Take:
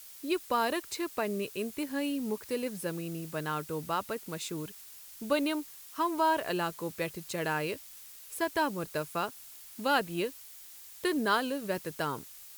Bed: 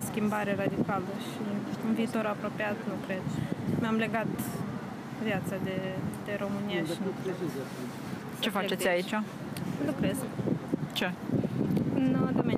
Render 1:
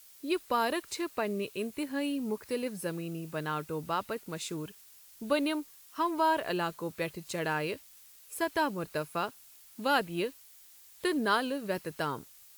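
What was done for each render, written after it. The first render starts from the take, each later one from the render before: noise print and reduce 6 dB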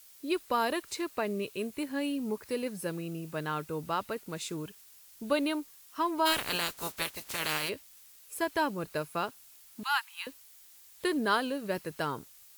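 6.25–7.68 s: spectral peaks clipped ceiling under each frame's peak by 27 dB; 9.83–10.27 s: steep high-pass 850 Hz 96 dB/octave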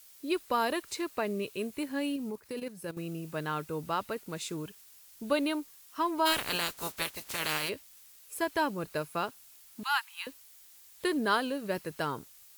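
2.16–2.97 s: level held to a coarse grid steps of 12 dB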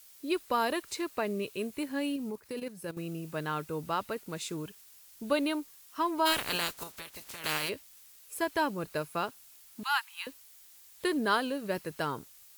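6.83–7.44 s: compression 4:1, threshold -41 dBFS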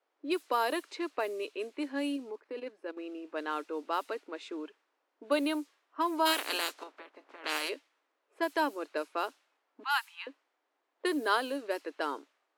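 level-controlled noise filter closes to 800 Hz, open at -27 dBFS; elliptic high-pass 280 Hz, stop band 40 dB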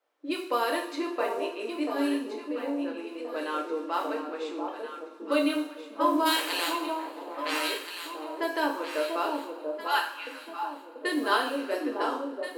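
echo whose repeats swap between lows and highs 688 ms, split 980 Hz, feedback 56%, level -3.5 dB; two-slope reverb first 0.49 s, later 2.5 s, from -18 dB, DRR -0.5 dB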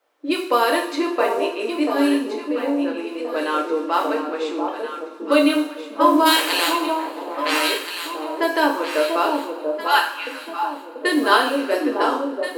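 trim +9.5 dB

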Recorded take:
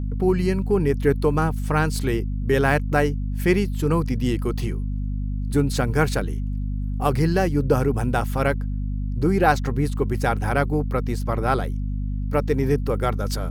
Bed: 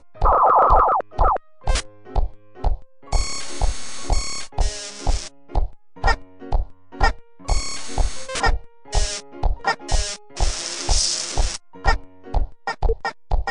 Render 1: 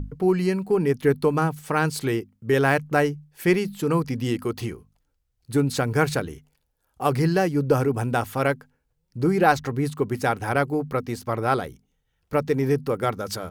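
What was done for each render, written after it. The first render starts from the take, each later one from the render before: hum notches 50/100/150/200/250 Hz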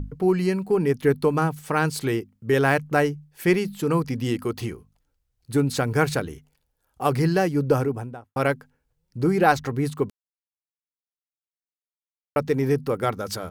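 7.66–8.36 s: studio fade out; 10.10–12.36 s: mute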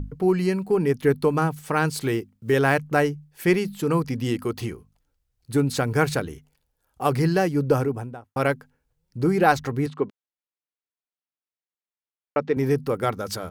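1.95–2.54 s: block-companded coder 7-bit; 9.86–12.57 s: band-pass 190–3300 Hz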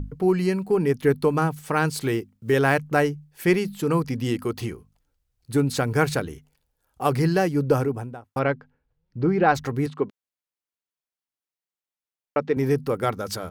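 8.39–9.55 s: distance through air 220 m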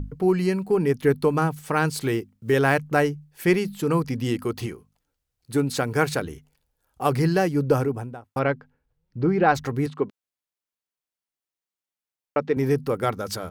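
4.66–6.22 s: bass shelf 95 Hz -10.5 dB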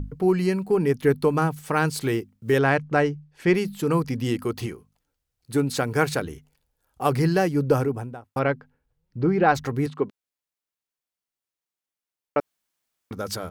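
2.58–3.55 s: distance through air 84 m; 12.40–13.11 s: room tone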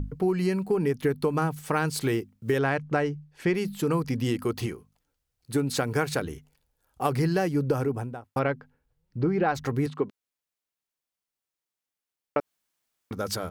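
compression, threshold -21 dBFS, peak gain reduction 8 dB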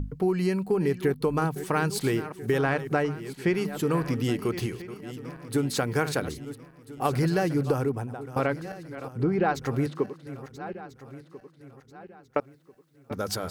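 backward echo that repeats 671 ms, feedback 58%, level -13 dB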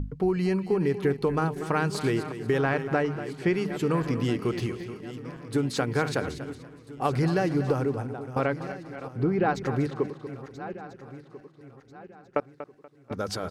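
distance through air 50 m; feedback delay 240 ms, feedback 28%, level -12.5 dB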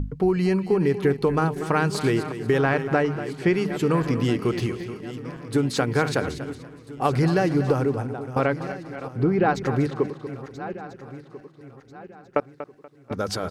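trim +4 dB

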